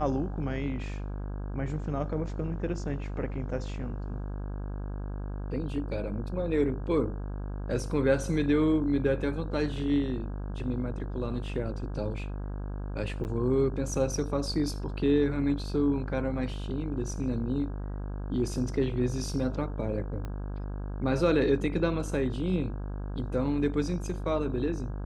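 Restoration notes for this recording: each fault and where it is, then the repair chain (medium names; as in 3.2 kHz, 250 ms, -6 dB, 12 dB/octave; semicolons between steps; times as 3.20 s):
buzz 50 Hz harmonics 33 -35 dBFS
13.24–13.25 s: dropout 9.5 ms
20.25 s: pop -25 dBFS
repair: de-click; de-hum 50 Hz, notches 33; interpolate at 13.24 s, 9.5 ms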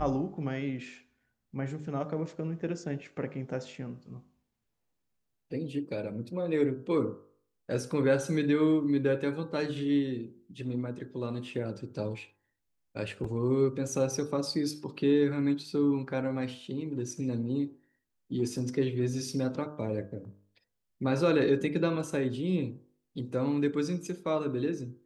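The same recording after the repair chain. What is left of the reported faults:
20.25 s: pop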